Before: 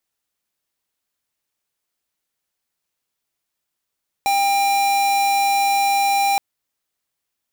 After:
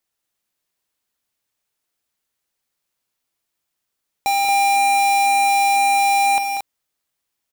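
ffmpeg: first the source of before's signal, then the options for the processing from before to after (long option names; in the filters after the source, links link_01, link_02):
-f lavfi -i "aevalsrc='0.133*(2*lt(mod(797*t,1),0.5)-1)':duration=2.12:sample_rate=44100"
-af "aecho=1:1:51|189|227:0.141|0.355|0.473"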